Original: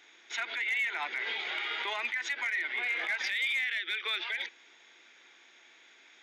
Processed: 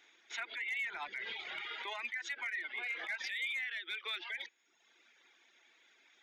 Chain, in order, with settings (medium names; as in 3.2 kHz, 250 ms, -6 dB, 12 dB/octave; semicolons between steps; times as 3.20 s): 0.78–1.68 s: octave divider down 1 oct, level -6 dB; reverb removal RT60 0.98 s; trim -6 dB